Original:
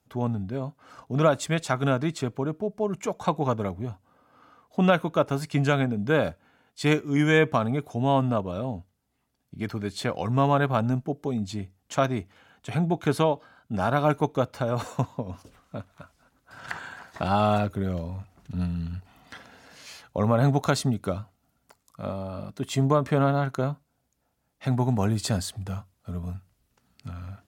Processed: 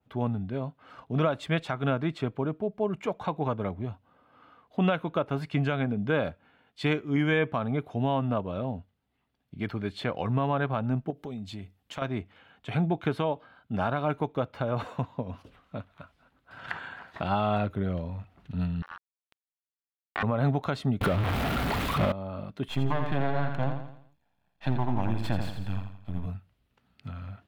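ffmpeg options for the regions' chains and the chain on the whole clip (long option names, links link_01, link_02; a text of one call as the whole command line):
ffmpeg -i in.wav -filter_complex "[0:a]asettb=1/sr,asplit=3[link_01][link_02][link_03];[link_01]atrim=end=11.104[link_04];[link_02]atrim=start=11.1:end=12.02,asetpts=PTS-STARTPTS,afade=type=in:duration=0.004:curve=qsin,afade=type=out:start_time=0.916:duration=0.004:curve=qsin,aemphasis=mode=production:type=cd,acompressor=threshold=-34dB:ratio=3:attack=3.2:release=140:knee=1:detection=peak[link_05];[link_03]atrim=start=12.016[link_06];[link_04][link_05]acrossfade=duration=0.004:curve1=hsin:curve2=qsin[link_07];[link_07][link_06]acrossfade=duration=0.004:curve1=qsin:curve2=hsin,asettb=1/sr,asplit=3[link_08][link_09][link_10];[link_08]atrim=end=18.824[link_11];[link_09]atrim=start=18.82:end=20.23,asetpts=PTS-STARTPTS,afade=type=in:duration=0.004:curve=qsin,afade=type=out:start_time=1.406:duration=0.004:curve=qsin,asplit=2[link_12][link_13];[link_13]adelay=46,volume=-5dB[link_14];[link_12][link_14]amix=inputs=2:normalize=0,atrim=end_sample=62181,acrusher=bits=3:mix=0:aa=0.5,aeval=exprs='val(0)*sin(2*PI*1300*n/s)':channel_layout=same[link_15];[link_10]atrim=start=20.226[link_16];[link_11][link_15]acrossfade=duration=0.004:curve1=hsin:curve2=qsin[link_17];[link_17][link_16]acrossfade=duration=0.004:curve1=qsin:curve2=hsin,asettb=1/sr,asplit=3[link_18][link_19][link_20];[link_18]atrim=end=21.014[link_21];[link_19]atrim=start=21.01:end=22.12,asetpts=PTS-STARTPTS,afade=type=in:duration=0.004:curve=qsin,afade=type=out:start_time=1.106:duration=0.004:curve=qsin,aeval=exprs='val(0)+0.5*0.0473*sgn(val(0))':channel_layout=same,acontrast=85[link_22];[link_20]atrim=start=22.116[link_23];[link_21][link_22]acrossfade=duration=0.004:curve1=hsin:curve2=qsin[link_24];[link_24][link_23]acrossfade=duration=0.004:curve1=qsin:curve2=hsin,asettb=1/sr,asplit=3[link_25][link_26][link_27];[link_25]atrim=end=22.684[link_28];[link_26]atrim=start=22.68:end=26.26,asetpts=PTS-STARTPTS,afade=type=in:duration=0.004:curve=qsin,afade=type=out:start_time=3.576:duration=0.004:curve=qsin,aecho=1:1:1.2:0.78,atrim=end_sample=157878,aeval=exprs='max(val(0),0)':channel_layout=same,aecho=1:1:84|168|252|336|420:0.447|0.192|0.0826|0.0355|0.0153,atrim=end_sample=157878[link_29];[link_27]atrim=start=26.256[link_30];[link_28][link_29]acrossfade=duration=0.004:curve1=hsin:curve2=qsin[link_31];[link_31][link_30]acrossfade=duration=0.004:curve1=qsin:curve2=hsin,highshelf=frequency=4600:width_type=q:width=1.5:gain=-11,alimiter=limit=-14dB:level=0:latency=1:release=202,adynamicequalizer=threshold=0.00631:dfrequency=2500:dqfactor=0.7:tfrequency=2500:tqfactor=0.7:attack=5:release=100:ratio=0.375:range=2:mode=cutabove:tftype=highshelf,volume=-1.5dB" out.wav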